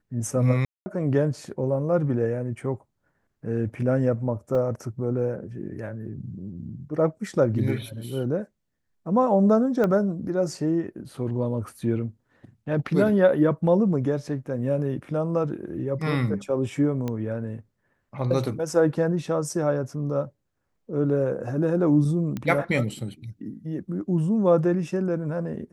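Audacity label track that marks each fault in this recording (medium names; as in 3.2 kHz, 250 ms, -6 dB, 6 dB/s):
0.650000	0.860000	dropout 210 ms
4.550000	4.550000	dropout 2.2 ms
9.840000	9.840000	pop -14 dBFS
17.080000	17.080000	pop -17 dBFS
22.370000	22.370000	pop -18 dBFS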